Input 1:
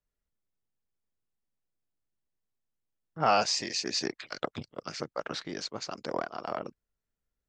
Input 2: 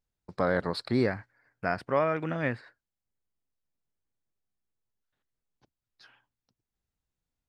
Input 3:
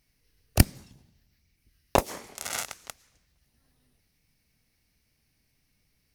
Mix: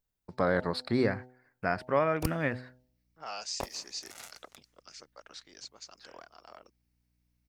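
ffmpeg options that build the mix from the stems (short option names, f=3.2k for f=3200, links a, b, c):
-filter_complex "[0:a]aemphasis=mode=production:type=riaa,volume=-16.5dB[a];[1:a]bandreject=f=126.2:t=h:w=4,bandreject=f=252.4:t=h:w=4,bandreject=f=378.6:t=h:w=4,bandreject=f=504.8:t=h:w=4,bandreject=f=631:t=h:w=4,bandreject=f=757.2:t=h:w=4,bandreject=f=883.4:t=h:w=4,volume=-0.5dB[b];[2:a]aeval=exprs='val(0)+0.00112*(sin(2*PI*60*n/s)+sin(2*PI*2*60*n/s)/2+sin(2*PI*3*60*n/s)/3+sin(2*PI*4*60*n/s)/4+sin(2*PI*5*60*n/s)/5)':c=same,adelay=1650,volume=-15.5dB[c];[a][b][c]amix=inputs=3:normalize=0"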